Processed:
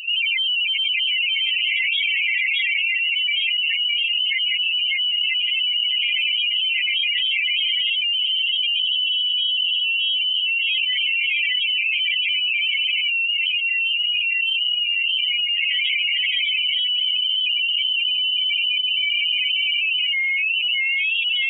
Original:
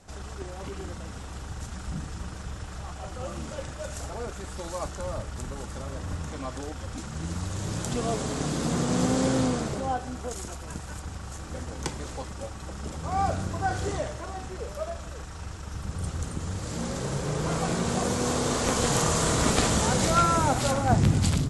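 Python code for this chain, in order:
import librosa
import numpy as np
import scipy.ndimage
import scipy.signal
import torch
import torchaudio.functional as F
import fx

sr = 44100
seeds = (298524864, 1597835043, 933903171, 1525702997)

y = scipy.signal.sosfilt(scipy.signal.butter(2, 500.0, 'highpass', fs=sr, output='sos'), x)
y = fx.spec_topn(y, sr, count=2)
y = fx.echo_feedback(y, sr, ms=616, feedback_pct=21, wet_db=-4)
y = fx.freq_invert(y, sr, carrier_hz=3500)
y = fx.env_flatten(y, sr, amount_pct=100)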